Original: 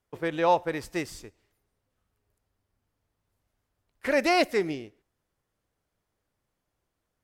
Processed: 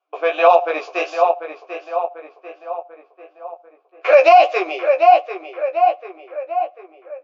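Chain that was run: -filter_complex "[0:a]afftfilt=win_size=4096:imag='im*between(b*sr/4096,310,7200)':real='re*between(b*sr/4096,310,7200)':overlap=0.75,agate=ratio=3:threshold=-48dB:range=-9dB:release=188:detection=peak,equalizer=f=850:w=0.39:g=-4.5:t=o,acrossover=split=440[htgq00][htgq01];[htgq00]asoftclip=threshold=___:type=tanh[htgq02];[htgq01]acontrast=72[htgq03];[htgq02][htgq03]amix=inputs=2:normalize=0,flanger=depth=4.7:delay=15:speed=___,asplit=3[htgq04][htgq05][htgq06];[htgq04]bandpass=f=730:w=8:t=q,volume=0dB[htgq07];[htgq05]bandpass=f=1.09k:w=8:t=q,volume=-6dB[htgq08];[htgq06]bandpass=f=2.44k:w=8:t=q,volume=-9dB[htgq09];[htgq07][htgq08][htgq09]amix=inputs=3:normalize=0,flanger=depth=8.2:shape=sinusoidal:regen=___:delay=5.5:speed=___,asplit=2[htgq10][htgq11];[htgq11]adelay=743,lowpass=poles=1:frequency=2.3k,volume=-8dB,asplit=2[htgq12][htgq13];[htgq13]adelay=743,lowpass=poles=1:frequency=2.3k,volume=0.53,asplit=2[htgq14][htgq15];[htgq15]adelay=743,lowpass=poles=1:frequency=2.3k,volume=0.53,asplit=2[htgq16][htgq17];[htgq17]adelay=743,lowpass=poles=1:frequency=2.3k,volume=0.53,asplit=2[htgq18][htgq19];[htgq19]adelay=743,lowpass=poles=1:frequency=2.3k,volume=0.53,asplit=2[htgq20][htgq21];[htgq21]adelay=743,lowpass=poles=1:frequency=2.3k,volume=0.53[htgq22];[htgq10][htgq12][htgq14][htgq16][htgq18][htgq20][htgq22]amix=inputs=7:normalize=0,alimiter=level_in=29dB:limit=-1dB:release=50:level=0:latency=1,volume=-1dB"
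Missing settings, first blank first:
-37dB, 0.46, 46, 1.5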